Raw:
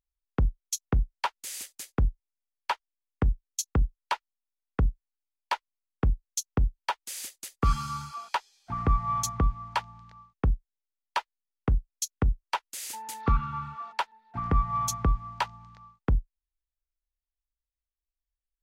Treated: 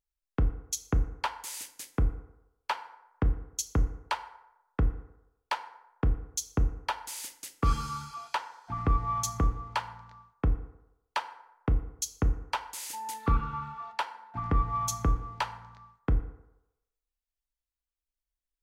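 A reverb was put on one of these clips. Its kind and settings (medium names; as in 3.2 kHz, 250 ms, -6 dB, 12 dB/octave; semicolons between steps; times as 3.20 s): FDN reverb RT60 0.91 s, low-frequency decay 0.75×, high-frequency decay 0.55×, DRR 8 dB; trim -2 dB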